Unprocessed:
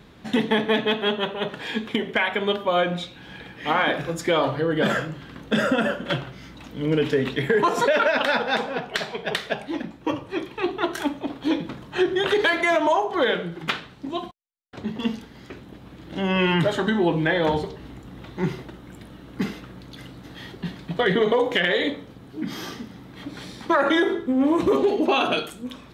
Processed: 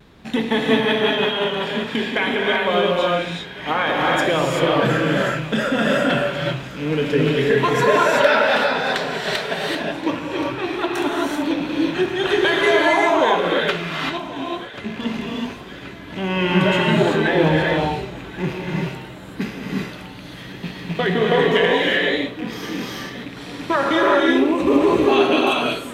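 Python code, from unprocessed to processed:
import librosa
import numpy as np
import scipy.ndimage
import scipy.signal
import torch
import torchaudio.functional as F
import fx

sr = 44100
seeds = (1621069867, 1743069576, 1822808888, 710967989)

p1 = fx.rattle_buzz(x, sr, strikes_db=-35.0, level_db=-26.0)
p2 = p1 + fx.echo_thinned(p1, sr, ms=1081, feedback_pct=68, hz=490.0, wet_db=-17.0, dry=0)
p3 = fx.rev_gated(p2, sr, seeds[0], gate_ms=410, shape='rising', drr_db=-3.0)
y = fx.vibrato(p3, sr, rate_hz=0.54, depth_cents=19.0)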